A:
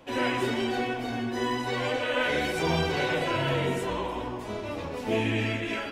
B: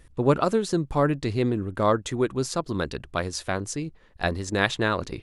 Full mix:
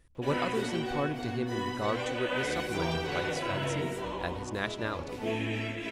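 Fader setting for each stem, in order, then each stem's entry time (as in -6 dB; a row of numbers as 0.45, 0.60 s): -5.5, -10.5 dB; 0.15, 0.00 s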